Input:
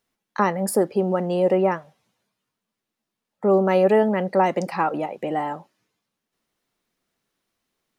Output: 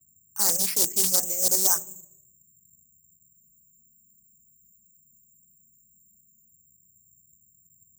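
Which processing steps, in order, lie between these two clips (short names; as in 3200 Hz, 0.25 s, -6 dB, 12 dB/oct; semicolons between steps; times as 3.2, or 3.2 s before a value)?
nonlinear frequency compression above 1300 Hz 1.5:1; gate -46 dBFS, range -38 dB; on a send at -16 dB: low shelf 360 Hz +9.5 dB + reverb RT60 0.75 s, pre-delay 18 ms; on the sum: reverb removal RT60 1.2 s; reverse; compressor 12:1, threshold -27 dBFS, peak gain reduction 14 dB; reverse; notches 60/120/180/240/300/360/420 Hz; band noise 60–200 Hz -69 dBFS; careless resampling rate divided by 6×, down none, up zero stuff; high shelf 3100 Hz +10 dB; spectral freeze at 3.36, 3.15 s; Doppler distortion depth 0.56 ms; gain -5.5 dB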